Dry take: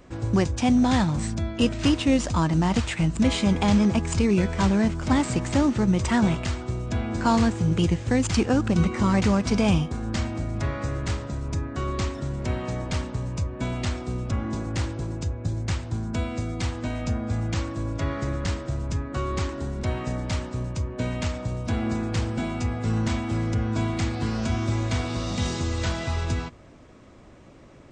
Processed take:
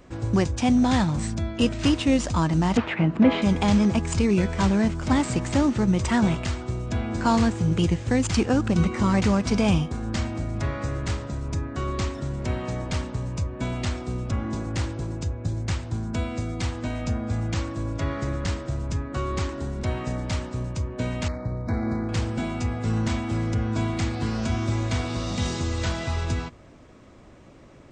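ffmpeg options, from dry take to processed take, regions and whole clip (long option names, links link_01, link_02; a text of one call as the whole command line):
ffmpeg -i in.wav -filter_complex "[0:a]asettb=1/sr,asplit=3[link_01][link_02][link_03];[link_01]atrim=end=2.774[link_04];[link_02]atrim=start=2.77:end=3.42,asetpts=PTS-STARTPTS,afade=type=in:duration=0.004:curve=qsin,afade=type=out:start_time=0.646:duration=0.004:curve=qsin,aemphasis=mode=reproduction:type=75fm,acontrast=53,highpass=210,lowpass=2600[link_05];[link_03]atrim=start=3.416[link_06];[link_04][link_05]acrossfade=duration=0.004:curve1=hsin:curve2=qsin[link_07];[link_07][link_06]acrossfade=duration=0.004:curve1=qsin:curve2=hsin,asettb=1/sr,asplit=3[link_08][link_09][link_10];[link_08]atrim=end=21.284[link_11];[link_09]atrim=start=21.28:end=22.09,asetpts=PTS-STARTPTS,afade=type=in:duration=0.004:curve=qsin,afade=type=out:start_time=0.806:duration=0.004:curve=qsin,adynamicsmooth=sensitivity=3.5:basefreq=1700,asuperstop=centerf=3000:order=20:qfactor=2.1[link_12];[link_10]atrim=start=22.086[link_13];[link_11][link_12]acrossfade=duration=0.004:curve1=hsin:curve2=qsin[link_14];[link_14][link_13]acrossfade=duration=0.004:curve1=qsin:curve2=hsin" out.wav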